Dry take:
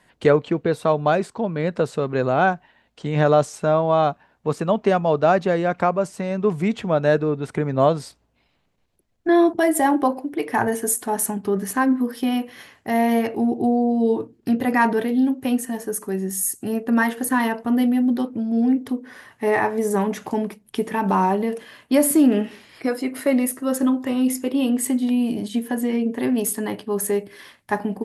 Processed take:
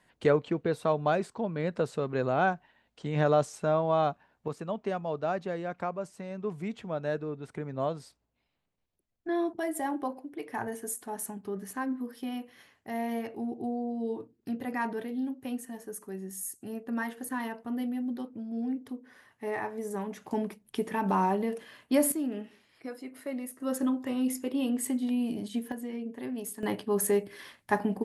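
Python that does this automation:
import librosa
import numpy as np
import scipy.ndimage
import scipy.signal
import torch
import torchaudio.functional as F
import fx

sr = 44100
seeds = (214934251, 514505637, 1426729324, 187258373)

y = fx.gain(x, sr, db=fx.steps((0.0, -8.0), (4.48, -14.0), (20.31, -7.5), (22.12, -17.0), (23.6, -9.0), (25.72, -15.0), (26.63, -4.0)))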